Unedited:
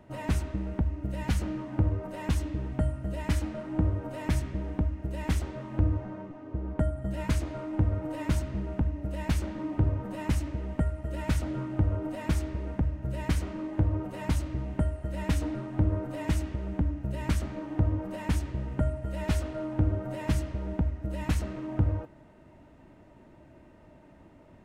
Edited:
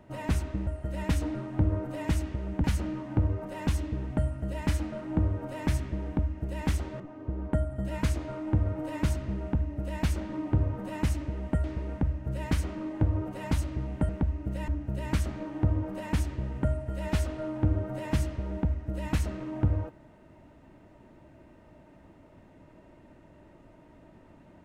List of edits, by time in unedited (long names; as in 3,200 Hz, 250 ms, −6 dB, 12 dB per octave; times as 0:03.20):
0:00.67–0:01.26: swap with 0:14.87–0:16.84
0:05.62–0:06.26: remove
0:10.90–0:12.42: remove